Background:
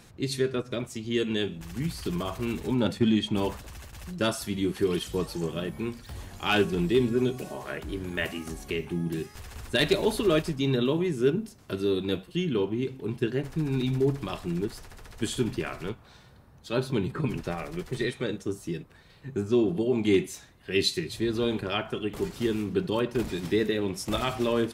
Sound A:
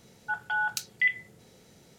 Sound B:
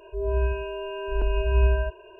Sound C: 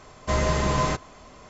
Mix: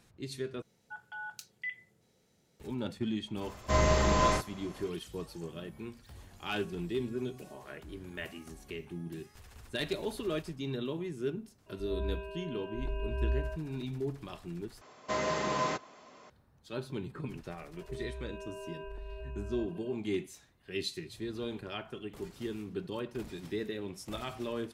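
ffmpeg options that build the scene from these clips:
ffmpeg -i bed.wav -i cue0.wav -i cue1.wav -i cue2.wav -filter_complex "[3:a]asplit=2[link_01][link_02];[2:a]asplit=2[link_03][link_04];[0:a]volume=-11dB[link_05];[link_01]asplit=2[link_06][link_07];[link_07]adelay=40,volume=-2dB[link_08];[link_06][link_08]amix=inputs=2:normalize=0[link_09];[link_02]highpass=230,lowpass=6600[link_10];[link_04]acompressor=threshold=-33dB:ratio=6:attack=3.2:release=140:knee=1:detection=peak[link_11];[link_05]asplit=3[link_12][link_13][link_14];[link_12]atrim=end=0.624[link_15];[1:a]atrim=end=1.98,asetpts=PTS-STARTPTS,volume=-14dB[link_16];[link_13]atrim=start=2.596:end=14.814[link_17];[link_10]atrim=end=1.49,asetpts=PTS-STARTPTS,volume=-6dB[link_18];[link_14]atrim=start=16.296[link_19];[link_09]atrim=end=1.49,asetpts=PTS-STARTPTS,volume=-5dB,afade=type=in:duration=0.004:curve=hsin,afade=type=out:start_time=1.486:duration=0.004:curve=hsin,adelay=150381S[link_20];[link_03]atrim=end=2.19,asetpts=PTS-STARTPTS,volume=-11.5dB,afade=type=in:duration=0.004:curve=hsin,afade=type=out:start_time=2.186:duration=0.004:curve=hsin,adelay=11660[link_21];[link_11]atrim=end=2.19,asetpts=PTS-STARTPTS,volume=-7dB,afade=type=in:duration=0.004:curve=hsin,afade=type=out:start_time=2.186:duration=0.004:curve=hsin,adelay=17760[link_22];[link_15][link_16]acrossfade=duration=0.004:curve1=hsin:curve2=hsin[link_23];[link_23][link_17]acrossfade=duration=0.004:curve1=hsin:curve2=hsin[link_24];[link_24][link_18]acrossfade=duration=0.004:curve1=hsin:curve2=hsin[link_25];[link_25][link_19]acrossfade=duration=0.004:curve1=hsin:curve2=hsin[link_26];[link_26][link_20][link_21][link_22]amix=inputs=4:normalize=0" out.wav

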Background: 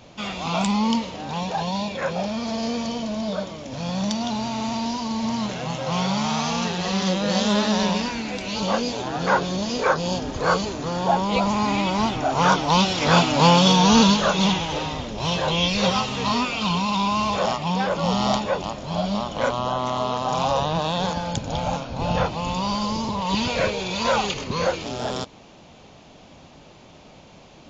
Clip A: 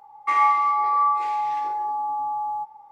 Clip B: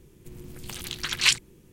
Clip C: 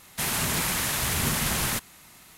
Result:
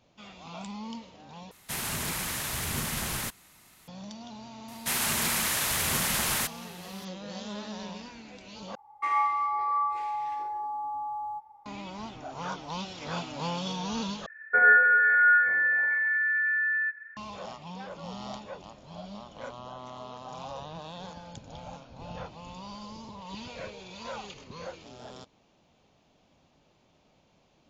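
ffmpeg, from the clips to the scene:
ffmpeg -i bed.wav -i cue0.wav -i cue1.wav -i cue2.wav -filter_complex "[3:a]asplit=2[link_01][link_02];[1:a]asplit=2[link_03][link_04];[0:a]volume=-18dB[link_05];[link_02]lowshelf=frequency=360:gain=-8[link_06];[link_03]equalizer=frequency=72:width_type=o:width=0.77:gain=12[link_07];[link_04]lowpass=frequency=2200:width_type=q:width=0.5098,lowpass=frequency=2200:width_type=q:width=0.6013,lowpass=frequency=2200:width_type=q:width=0.9,lowpass=frequency=2200:width_type=q:width=2.563,afreqshift=-2600[link_08];[link_05]asplit=4[link_09][link_10][link_11][link_12];[link_09]atrim=end=1.514[link_13];[link_01]atrim=end=2.37,asetpts=PTS-STARTPTS,volume=-6dB[link_14];[link_10]atrim=start=3.876:end=8.754[link_15];[link_07]atrim=end=2.91,asetpts=PTS-STARTPTS,volume=-7.5dB[link_16];[link_11]atrim=start=11.656:end=14.264[link_17];[link_08]atrim=end=2.91[link_18];[link_12]atrim=start=17.166[link_19];[link_06]atrim=end=2.37,asetpts=PTS-STARTPTS,volume=-0.5dB,afade=type=in:duration=0.004:curve=hsin,afade=type=out:start_time=2.366:duration=0.004:curve=hsin,adelay=4680[link_20];[link_13][link_14]acrossfade=duration=0.004:curve1=hsin:curve2=hsin[link_21];[link_21][link_15]acrossfade=duration=0.004:curve1=hsin:curve2=hsin[link_22];[link_22][link_16]acrossfade=duration=0.004:curve1=hsin:curve2=hsin[link_23];[link_23][link_17]acrossfade=duration=0.004:curve1=hsin:curve2=hsin[link_24];[link_24][link_18]acrossfade=duration=0.004:curve1=hsin:curve2=hsin[link_25];[link_25][link_19]acrossfade=duration=0.004:curve1=hsin:curve2=hsin[link_26];[link_26][link_20]amix=inputs=2:normalize=0" out.wav

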